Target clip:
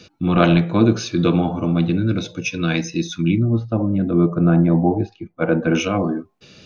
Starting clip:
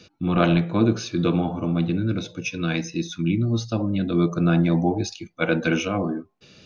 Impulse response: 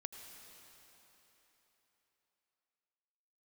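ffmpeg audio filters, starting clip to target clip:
-filter_complex "[0:a]asettb=1/sr,asplit=3[a][b][c];[a]atrim=end=3.394[d];[b]atrim=start=3.39:end=5.75,asetpts=PTS-STARTPTS,afade=t=in:d=0.004:c=qsin,afade=t=out:st=2.356:d=0.004:c=qsin,lowpass=1.2k[e];[c]atrim=start=5.746[f];[d][e]acrossfade=d=0.004:c1=hsin:c2=qsin[g];[g][f]acrossfade=d=0.004:c1=qsin:c2=hsin,volume=4.5dB"

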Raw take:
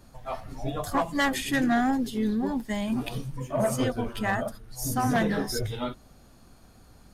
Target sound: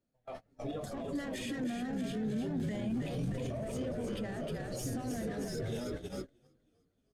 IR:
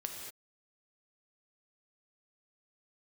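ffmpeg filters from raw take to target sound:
-filter_complex "[0:a]dynaudnorm=f=210:g=13:m=8dB,asplit=2[a][b];[b]highpass=f=720:p=1,volume=16dB,asoftclip=type=tanh:threshold=-9.5dB[c];[a][c]amix=inputs=2:normalize=0,lowpass=f=1.3k:p=1,volume=-6dB,acompressor=threshold=-26dB:ratio=8,bandreject=f=67.3:t=h:w=4,bandreject=f=134.6:t=h:w=4,bandreject=f=201.9:t=h:w=4,bandreject=f=269.2:t=h:w=4,bandreject=f=336.5:t=h:w=4,asplit=9[d][e][f][g][h][i][j][k][l];[e]adelay=314,afreqshift=-50,volume=-5dB[m];[f]adelay=628,afreqshift=-100,volume=-9.4dB[n];[g]adelay=942,afreqshift=-150,volume=-13.9dB[o];[h]adelay=1256,afreqshift=-200,volume=-18.3dB[p];[i]adelay=1570,afreqshift=-250,volume=-22.7dB[q];[j]adelay=1884,afreqshift=-300,volume=-27.2dB[r];[k]adelay=2198,afreqshift=-350,volume=-31.6dB[s];[l]adelay=2512,afreqshift=-400,volume=-36.1dB[t];[d][m][n][o][p][q][r][s][t]amix=inputs=9:normalize=0,agate=range=-30dB:threshold=-31dB:ratio=16:detection=peak,alimiter=level_in=5dB:limit=-24dB:level=0:latency=1:release=12,volume=-5dB,equalizer=f=125:t=o:w=1:g=6,equalizer=f=250:t=o:w=1:g=5,equalizer=f=500:t=o:w=1:g=5,equalizer=f=1k:t=o:w=1:g=-12,equalizer=f=8k:t=o:w=1:g=5,volume=-4.5dB"

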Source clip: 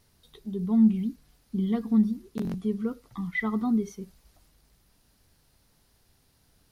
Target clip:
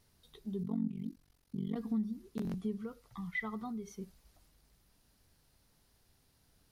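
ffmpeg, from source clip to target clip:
-filter_complex "[0:a]asettb=1/sr,asplit=3[a][b][c];[a]atrim=end=0.634[d];[b]atrim=start=0.63:end=1.76,asetpts=PTS-STARTPTS,afade=t=in:d=0.004:c=qsin,afade=t=out:st=1.126:d=0.004:c=qsin,tremolo=f=46:d=0.974[e];[c]atrim=start=1.756[f];[d][e]acrossfade=d=0.004:c1=hsin:c2=qsin[g];[g][f]acrossfade=d=0.004:c1=qsin:c2=hsin,acompressor=threshold=-28dB:ratio=3,asettb=1/sr,asplit=3[h][i][j];[h]atrim=end=2.774[k];[i]atrim=start=2.77:end=3.91,asetpts=PTS-STARTPTS,afade=t=in:d=0.004:c=qsin,afade=t=out:st=1.136:d=0.004:c=qsin,equalizer=f=280:t=o:w=0.78:g=-10.5[l];[j]atrim=start=3.906[m];[k][l]acrossfade=d=0.004:c1=hsin:c2=qsin[n];[n][m]acrossfade=d=0.004:c1=qsin:c2=hsin,volume=-5dB"

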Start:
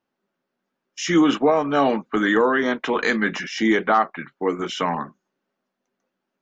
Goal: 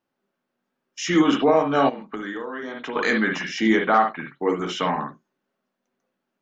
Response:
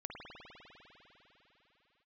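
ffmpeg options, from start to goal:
-filter_complex "[1:a]atrim=start_sample=2205,atrim=end_sample=4410[a];[0:a][a]afir=irnorm=-1:irlink=0,asplit=3[b][c][d];[b]afade=t=out:st=1.88:d=0.02[e];[c]acompressor=threshold=-33dB:ratio=10,afade=t=in:st=1.88:d=0.02,afade=t=out:st=2.95:d=0.02[f];[d]afade=t=in:st=2.95:d=0.02[g];[e][f][g]amix=inputs=3:normalize=0,volume=4.5dB"

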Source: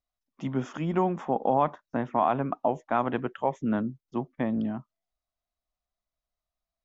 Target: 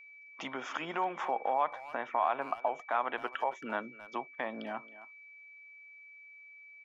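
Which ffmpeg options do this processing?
-filter_complex "[0:a]asplit=2[a][b];[b]acompressor=threshold=-39dB:ratio=6,volume=1dB[c];[a][c]amix=inputs=2:normalize=0,alimiter=limit=-19dB:level=0:latency=1:release=181,highpass=790,lowpass=5k,asplit=2[d][e];[e]adelay=270,highpass=300,lowpass=3.4k,asoftclip=type=hard:threshold=-30.5dB,volume=-15dB[f];[d][f]amix=inputs=2:normalize=0,aeval=exprs='val(0)+0.00178*sin(2*PI*2300*n/s)':c=same,volume=4dB"

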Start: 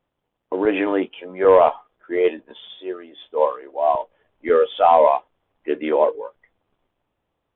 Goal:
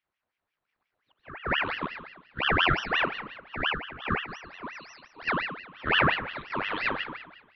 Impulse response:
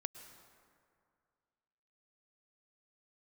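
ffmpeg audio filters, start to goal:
-filter_complex "[0:a]areverse[a];[1:a]atrim=start_sample=2205,asetrate=79380,aresample=44100[b];[a][b]afir=irnorm=-1:irlink=0,aeval=exprs='val(0)*sin(2*PI*1500*n/s+1500*0.6/5.7*sin(2*PI*5.7*n/s))':c=same"

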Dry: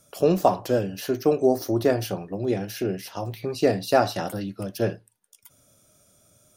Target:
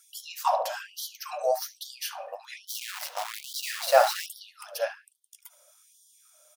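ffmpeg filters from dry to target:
-filter_complex "[0:a]bandreject=f=69.1:t=h:w=4,bandreject=f=138.2:t=h:w=4,bandreject=f=207.3:t=h:w=4,bandreject=f=276.4:t=h:w=4,bandreject=f=345.5:t=h:w=4,bandreject=f=414.6:t=h:w=4,bandreject=f=483.7:t=h:w=4,bandreject=f=552.8:t=h:w=4,bandreject=f=621.9:t=h:w=4,bandreject=f=691:t=h:w=4,bandreject=f=760.1:t=h:w=4,bandreject=f=829.2:t=h:w=4,bandreject=f=898.3:t=h:w=4,bandreject=f=967.4:t=h:w=4,bandreject=f=1.0365k:t=h:w=4,bandreject=f=1.1056k:t=h:w=4,bandreject=f=1.1747k:t=h:w=4,bandreject=f=1.2438k:t=h:w=4,bandreject=f=1.3129k:t=h:w=4,bandreject=f=1.382k:t=h:w=4,bandreject=f=1.4511k:t=h:w=4,bandreject=f=1.5202k:t=h:w=4,bandreject=f=1.5893k:t=h:w=4,bandreject=f=1.6584k:t=h:w=4,bandreject=f=1.7275k:t=h:w=4,bandreject=f=1.7966k:t=h:w=4,asplit=2[a][b];[b]adelay=72,lowpass=f=1.5k:p=1,volume=-8dB,asplit=2[c][d];[d]adelay=72,lowpass=f=1.5k:p=1,volume=0.53,asplit=2[e][f];[f]adelay=72,lowpass=f=1.5k:p=1,volume=0.53,asplit=2[g][h];[h]adelay=72,lowpass=f=1.5k:p=1,volume=0.53,asplit=2[i][j];[j]adelay=72,lowpass=f=1.5k:p=1,volume=0.53,asplit=2[k][l];[l]adelay=72,lowpass=f=1.5k:p=1,volume=0.53[m];[c][e][g][i][k][m]amix=inputs=6:normalize=0[n];[a][n]amix=inputs=2:normalize=0,asplit=3[o][p][q];[o]afade=t=out:st=2.67:d=0.02[r];[p]acrusher=bits=6:dc=4:mix=0:aa=0.000001,afade=t=in:st=2.67:d=0.02,afade=t=out:st=4.25:d=0.02[s];[q]afade=t=in:st=4.25:d=0.02[t];[r][s][t]amix=inputs=3:normalize=0,afftfilt=real='re*gte(b*sr/1024,470*pow(3100/470,0.5+0.5*sin(2*PI*1.2*pts/sr)))':imag='im*gte(b*sr/1024,470*pow(3100/470,0.5+0.5*sin(2*PI*1.2*pts/sr)))':win_size=1024:overlap=0.75,volume=1.5dB"

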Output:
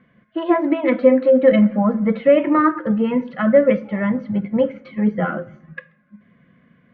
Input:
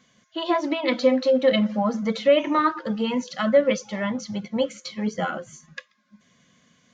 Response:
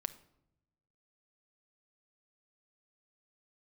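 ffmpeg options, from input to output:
-filter_complex "[0:a]lowpass=f=2k:w=0.5412,lowpass=f=2k:w=1.3066,equalizer=f=900:w=1:g=-7,asplit=2[a][b];[1:a]atrim=start_sample=2205,highshelf=f=6k:g=-8.5[c];[b][c]afir=irnorm=-1:irlink=0,volume=5dB[d];[a][d]amix=inputs=2:normalize=0"

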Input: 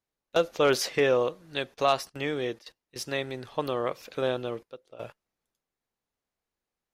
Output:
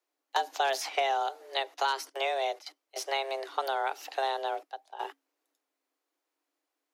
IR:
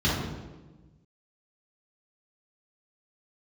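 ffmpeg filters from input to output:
-filter_complex "[0:a]acrossover=split=140|3200[a][b][c];[a]acompressor=threshold=-47dB:ratio=4[d];[b]acompressor=threshold=-30dB:ratio=4[e];[c]acompressor=threshold=-41dB:ratio=4[f];[d][e][f]amix=inputs=3:normalize=0,afreqshift=270,volume=3dB"

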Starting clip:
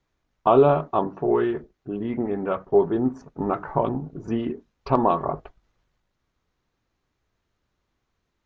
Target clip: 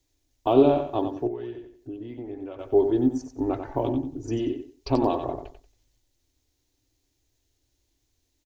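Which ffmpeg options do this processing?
-filter_complex "[0:a]aecho=1:1:92|184|276:0.398|0.0916|0.0211,asettb=1/sr,asplit=3[a][b][c];[a]atrim=end=1.274[d];[b]atrim=start=1.27:end=2.59,asetpts=PTS-STARTPTS,afade=t=in:d=0.004:c=qsin,afade=t=out:st=1.316:d=0.004:c=qsin,acompressor=threshold=-40dB:ratio=2[e];[c]atrim=start=2.586[f];[d][e]acrossfade=d=0.004:c1=hsin:c2=qsin[g];[g][f]acrossfade=d=0.004:c1=qsin:c2=hsin,firequalizer=gain_entry='entry(120,0);entry(180,-29);entry(270,3);entry(430,-6);entry(810,-8);entry(1200,-17);entry(1800,-8);entry(3000,-1);entry(4600,5);entry(7500,11)':delay=0.05:min_phase=1,volume=2.5dB"

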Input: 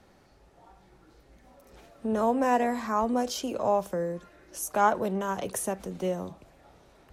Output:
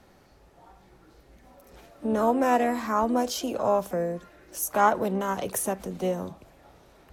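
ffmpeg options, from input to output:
-filter_complex "[0:a]equalizer=f=12k:w=5.4:g=7,asplit=2[a][b];[b]asetrate=58866,aresample=44100,atempo=0.749154,volume=-14dB[c];[a][c]amix=inputs=2:normalize=0,volume=2dB"

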